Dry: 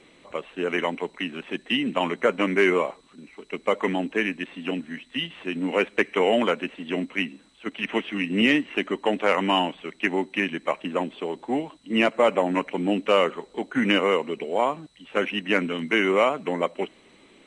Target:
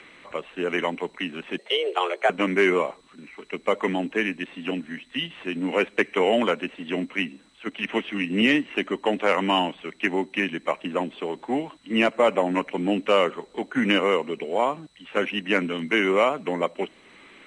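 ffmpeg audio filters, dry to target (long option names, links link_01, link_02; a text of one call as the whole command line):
ffmpeg -i in.wav -filter_complex "[0:a]acrossover=split=110|1300|2200[link_01][link_02][link_03][link_04];[link_03]acompressor=mode=upward:threshold=-39dB:ratio=2.5[link_05];[link_01][link_02][link_05][link_04]amix=inputs=4:normalize=0,asettb=1/sr,asplit=3[link_06][link_07][link_08];[link_06]atrim=end=1.584[link_09];[link_07]atrim=start=1.58:end=2.3,asetpts=PTS-STARTPTS,afade=type=in:duration=0.004:curve=qsin,afade=type=out:start_time=0.716:duration=0.004:curve=qsin,afreqshift=180[link_10];[link_08]atrim=start=2.296[link_11];[link_09][link_10]acrossfade=duration=0.004:curve1=hsin:curve2=qsin[link_12];[link_12][link_11]acrossfade=duration=0.004:curve1=qsin:curve2=hsin" out.wav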